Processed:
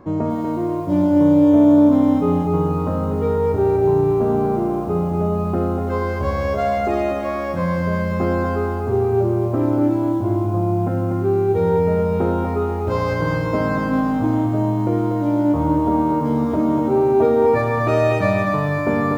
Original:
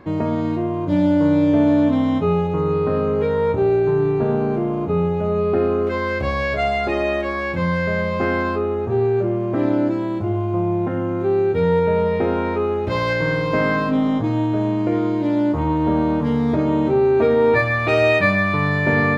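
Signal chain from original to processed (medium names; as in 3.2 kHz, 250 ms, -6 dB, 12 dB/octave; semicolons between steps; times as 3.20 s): high-order bell 2.7 kHz -9.5 dB; on a send at -12.5 dB: reverberation RT60 2.6 s, pre-delay 3 ms; on the sum: bit-crushed delay 242 ms, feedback 35%, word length 8-bit, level -5.5 dB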